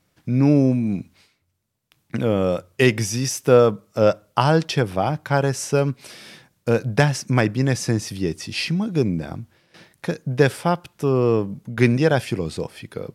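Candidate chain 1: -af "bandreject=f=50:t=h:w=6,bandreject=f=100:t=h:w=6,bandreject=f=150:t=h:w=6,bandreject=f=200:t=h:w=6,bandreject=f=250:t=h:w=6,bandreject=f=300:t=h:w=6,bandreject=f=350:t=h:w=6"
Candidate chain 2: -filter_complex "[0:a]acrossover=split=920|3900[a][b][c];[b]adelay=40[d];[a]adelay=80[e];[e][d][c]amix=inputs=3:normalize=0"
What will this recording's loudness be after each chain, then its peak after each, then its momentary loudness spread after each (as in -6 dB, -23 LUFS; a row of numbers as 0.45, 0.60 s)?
-21.5, -21.5 LUFS; -1.5, -2.5 dBFS; 14, 12 LU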